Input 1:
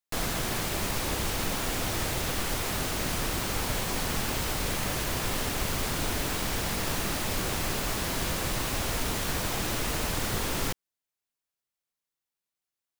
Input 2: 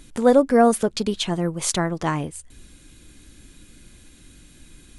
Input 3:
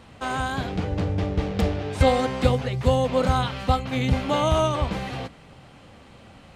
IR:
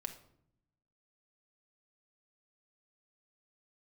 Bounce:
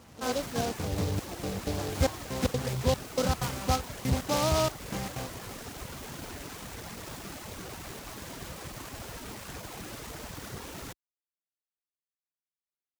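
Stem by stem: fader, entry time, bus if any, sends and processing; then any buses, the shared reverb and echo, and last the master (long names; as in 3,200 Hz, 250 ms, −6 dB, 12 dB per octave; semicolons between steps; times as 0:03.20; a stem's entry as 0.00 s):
−6.5 dB, 0.20 s, no send, running median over 3 samples; reverb reduction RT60 1.7 s
−12.5 dB, 0.00 s, no send, low-pass filter 1,100 Hz; flanger swept by the level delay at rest 10.3 ms, full sweep at −11.5 dBFS; spectral tilt +3.5 dB per octave
−5.0 dB, 0.00 s, no send, gate pattern "xxxx...xx.x" 189 BPM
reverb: not used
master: hard clipping −17.5 dBFS, distortion −20 dB; high-pass filter 51 Hz; short delay modulated by noise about 4,200 Hz, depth 0.075 ms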